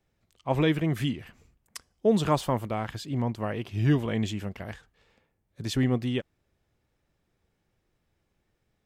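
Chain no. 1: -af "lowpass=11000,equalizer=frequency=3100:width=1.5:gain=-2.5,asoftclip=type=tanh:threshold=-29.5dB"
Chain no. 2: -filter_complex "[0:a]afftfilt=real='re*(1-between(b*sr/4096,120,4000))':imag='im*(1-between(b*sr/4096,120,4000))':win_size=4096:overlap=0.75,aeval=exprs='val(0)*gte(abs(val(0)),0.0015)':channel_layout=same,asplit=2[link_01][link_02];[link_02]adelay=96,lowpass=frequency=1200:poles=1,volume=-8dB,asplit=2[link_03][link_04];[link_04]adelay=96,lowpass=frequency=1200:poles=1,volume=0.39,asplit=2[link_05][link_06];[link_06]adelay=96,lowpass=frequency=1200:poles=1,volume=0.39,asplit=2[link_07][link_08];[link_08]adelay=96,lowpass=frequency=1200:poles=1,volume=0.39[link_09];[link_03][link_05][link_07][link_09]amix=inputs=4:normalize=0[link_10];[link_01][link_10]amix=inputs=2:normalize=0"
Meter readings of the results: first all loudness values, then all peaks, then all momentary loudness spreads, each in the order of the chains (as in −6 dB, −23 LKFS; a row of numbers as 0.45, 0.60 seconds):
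−35.5, −39.0 LKFS; −29.5, −20.5 dBFS; 14, 17 LU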